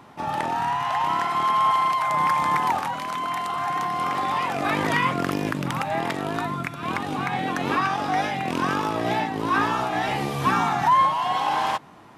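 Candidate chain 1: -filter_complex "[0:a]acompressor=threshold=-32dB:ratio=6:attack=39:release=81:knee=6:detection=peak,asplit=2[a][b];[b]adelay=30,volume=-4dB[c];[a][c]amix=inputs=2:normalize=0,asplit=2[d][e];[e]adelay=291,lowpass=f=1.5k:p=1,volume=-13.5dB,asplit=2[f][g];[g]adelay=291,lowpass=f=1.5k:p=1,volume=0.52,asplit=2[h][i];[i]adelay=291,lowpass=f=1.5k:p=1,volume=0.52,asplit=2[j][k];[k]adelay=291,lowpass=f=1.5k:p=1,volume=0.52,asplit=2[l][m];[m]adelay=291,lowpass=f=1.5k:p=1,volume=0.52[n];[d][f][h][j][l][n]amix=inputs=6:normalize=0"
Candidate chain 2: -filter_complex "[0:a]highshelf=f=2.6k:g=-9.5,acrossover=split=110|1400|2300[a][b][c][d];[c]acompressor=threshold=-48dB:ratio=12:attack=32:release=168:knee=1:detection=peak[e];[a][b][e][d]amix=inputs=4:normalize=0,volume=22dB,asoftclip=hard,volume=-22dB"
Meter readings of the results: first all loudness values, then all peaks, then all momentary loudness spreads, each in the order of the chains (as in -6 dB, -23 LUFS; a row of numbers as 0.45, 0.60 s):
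-29.5, -27.5 LUFS; -13.0, -22.0 dBFS; 3, 5 LU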